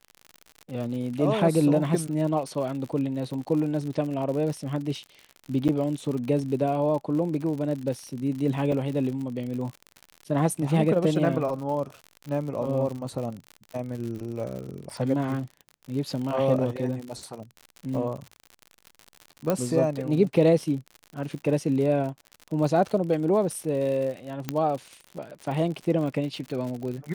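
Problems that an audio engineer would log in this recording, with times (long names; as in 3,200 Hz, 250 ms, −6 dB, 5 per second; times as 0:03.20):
surface crackle 74 per second −33 dBFS
0:05.68–0:05.69: drop-out 8.5 ms
0:08.72: drop-out 3.3 ms
0:17.95: drop-out 2.8 ms
0:19.50: click −11 dBFS
0:24.49: click −12 dBFS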